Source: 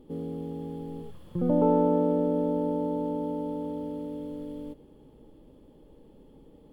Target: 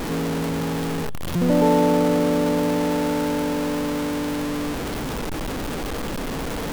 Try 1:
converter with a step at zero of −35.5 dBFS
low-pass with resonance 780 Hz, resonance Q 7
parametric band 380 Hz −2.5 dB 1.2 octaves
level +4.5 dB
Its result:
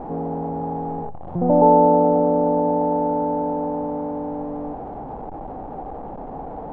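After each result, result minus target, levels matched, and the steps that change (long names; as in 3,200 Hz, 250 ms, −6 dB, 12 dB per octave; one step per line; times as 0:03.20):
converter with a step at zero: distortion −8 dB; 1,000 Hz band +4.0 dB
change: converter with a step at zero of −25.5 dBFS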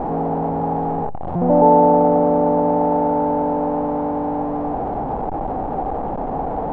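1,000 Hz band +6.0 dB
remove: low-pass with resonance 780 Hz, resonance Q 7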